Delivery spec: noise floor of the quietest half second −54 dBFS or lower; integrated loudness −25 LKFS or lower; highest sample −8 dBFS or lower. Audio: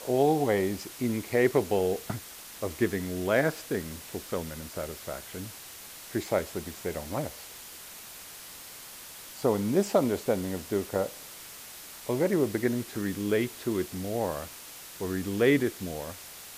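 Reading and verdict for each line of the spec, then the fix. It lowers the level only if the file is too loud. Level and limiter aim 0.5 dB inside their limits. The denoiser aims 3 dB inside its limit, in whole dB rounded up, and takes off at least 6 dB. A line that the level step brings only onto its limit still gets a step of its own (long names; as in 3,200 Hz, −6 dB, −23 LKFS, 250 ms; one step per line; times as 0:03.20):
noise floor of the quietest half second −45 dBFS: out of spec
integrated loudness −29.5 LKFS: in spec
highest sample −11.0 dBFS: in spec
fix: broadband denoise 12 dB, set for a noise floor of −45 dBFS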